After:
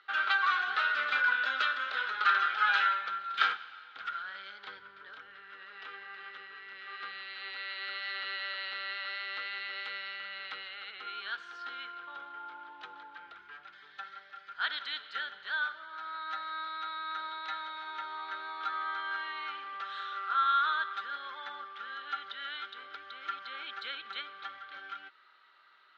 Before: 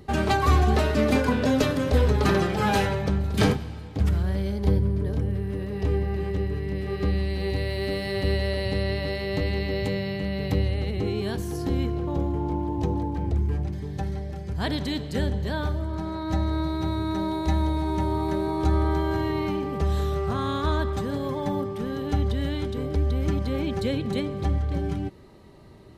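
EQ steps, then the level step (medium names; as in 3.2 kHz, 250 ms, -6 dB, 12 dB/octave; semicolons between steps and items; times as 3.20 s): resonant high-pass 1.4 kHz, resonance Q 16; four-pole ladder low-pass 4 kHz, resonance 55%; 0.0 dB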